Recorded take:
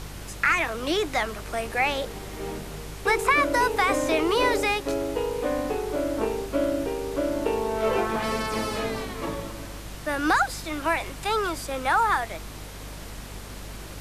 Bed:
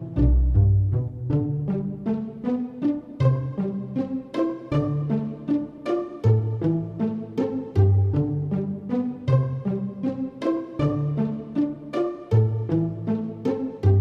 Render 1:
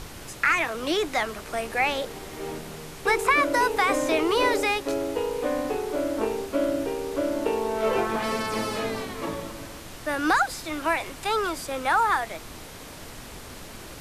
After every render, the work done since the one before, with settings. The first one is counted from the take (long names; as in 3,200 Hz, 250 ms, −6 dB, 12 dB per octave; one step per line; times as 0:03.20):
hum removal 50 Hz, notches 4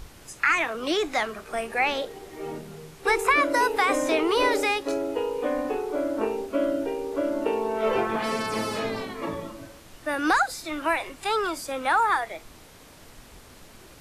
noise reduction from a noise print 8 dB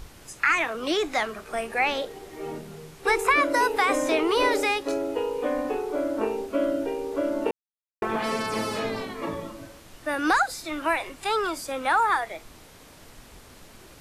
0:07.51–0:08.02: silence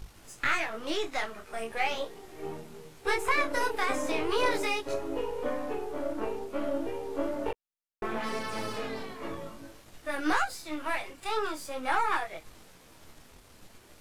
gain on one half-wave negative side −7 dB
micro pitch shift up and down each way 14 cents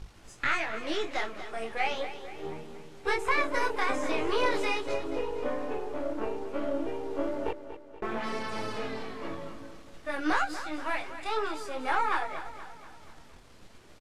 high-frequency loss of the air 50 metres
repeating echo 239 ms, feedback 51%, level −12 dB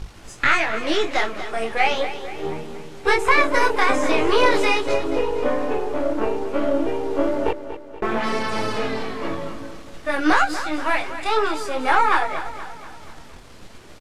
level +10.5 dB
brickwall limiter −3 dBFS, peak gain reduction 1.5 dB